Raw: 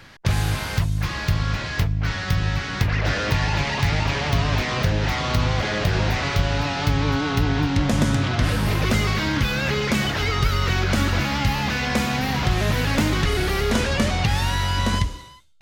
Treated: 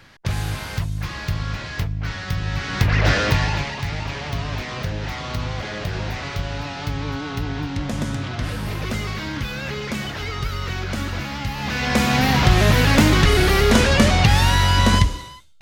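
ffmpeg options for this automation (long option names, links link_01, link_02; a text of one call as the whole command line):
ffmpeg -i in.wav -af "volume=17dB,afade=type=in:start_time=2.45:duration=0.64:silence=0.375837,afade=type=out:start_time=3.09:duration=0.66:silence=0.281838,afade=type=in:start_time=11.55:duration=0.66:silence=0.266073" out.wav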